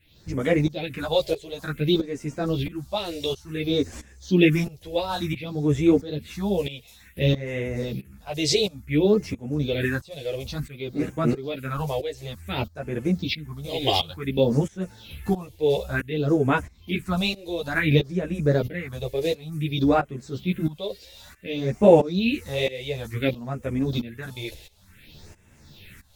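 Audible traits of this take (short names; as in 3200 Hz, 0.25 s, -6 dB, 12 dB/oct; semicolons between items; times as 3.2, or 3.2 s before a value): phasing stages 4, 0.56 Hz, lowest notch 210–4000 Hz; tremolo saw up 1.5 Hz, depth 90%; a shimmering, thickened sound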